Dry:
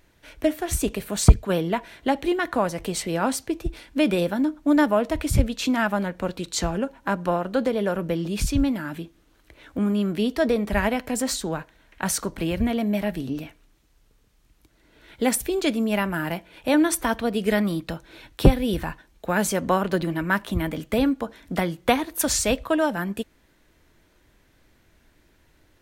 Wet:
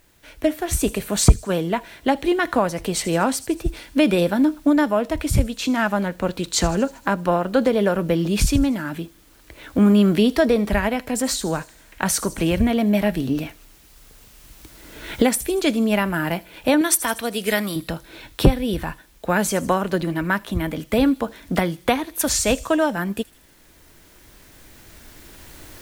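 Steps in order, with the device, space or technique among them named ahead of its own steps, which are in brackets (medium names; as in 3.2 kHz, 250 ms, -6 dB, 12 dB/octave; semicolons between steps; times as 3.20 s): 16.81–17.76 s: tilt EQ +2.5 dB/octave; feedback echo behind a high-pass 79 ms, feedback 58%, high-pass 5.4 kHz, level -13 dB; cheap recorder with automatic gain (white noise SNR 38 dB; recorder AGC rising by 5 dB/s)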